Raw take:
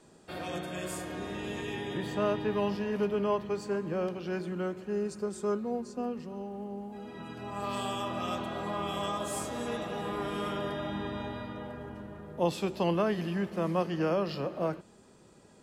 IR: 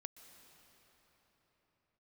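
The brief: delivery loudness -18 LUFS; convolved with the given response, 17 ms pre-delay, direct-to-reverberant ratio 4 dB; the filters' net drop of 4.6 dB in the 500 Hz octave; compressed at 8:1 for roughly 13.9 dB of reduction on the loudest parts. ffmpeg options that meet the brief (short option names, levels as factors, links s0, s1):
-filter_complex "[0:a]equalizer=f=500:t=o:g=-6,acompressor=threshold=0.00794:ratio=8,asplit=2[s0][s1];[1:a]atrim=start_sample=2205,adelay=17[s2];[s1][s2]afir=irnorm=-1:irlink=0,volume=1.19[s3];[s0][s3]amix=inputs=2:normalize=0,volume=21.1"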